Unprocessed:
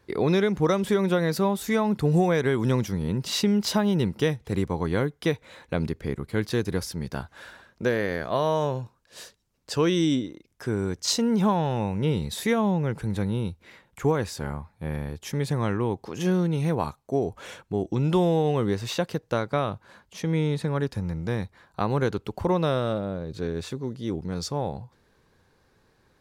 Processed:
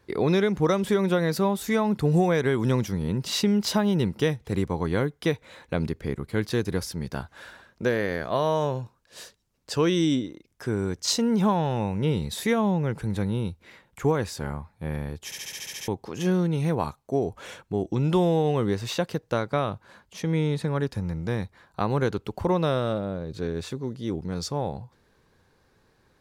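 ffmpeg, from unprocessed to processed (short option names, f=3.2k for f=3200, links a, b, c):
-filter_complex "[0:a]asplit=10[a][b][c][d][e][f][g][h][i][j];[a]atrim=end=15.322[k];[b]atrim=start=15.248:end=15.322[l];[c]atrim=start=15.248:end=15.322[m];[d]atrim=start=15.248:end=15.322[n];[e]atrim=start=15.248:end=15.322[o];[f]atrim=start=15.248:end=15.322[p];[g]atrim=start=15.248:end=15.322[q];[h]atrim=start=15.248:end=15.322[r];[i]atrim=start=15.248:end=15.322[s];[j]atrim=start=15.878[t];[k][l]acrossfade=d=0.004:c1=hsin:c2=hsin[u];[u][m]acrossfade=d=0.004:c1=hsin:c2=hsin[v];[v][n]acrossfade=d=0.004:c1=hsin:c2=hsin[w];[w][o]acrossfade=d=0.004:c1=hsin:c2=hsin[x];[x][p]acrossfade=d=0.004:c1=hsin:c2=hsin[y];[y][q]acrossfade=d=0.004:c1=hsin:c2=hsin[z];[z][r]acrossfade=d=0.004:c1=hsin:c2=hsin[aa];[aa][s]acrossfade=d=0.004:c1=hsin:c2=hsin[ab];[ab][t]acrossfade=d=0.004:c1=hsin:c2=hsin"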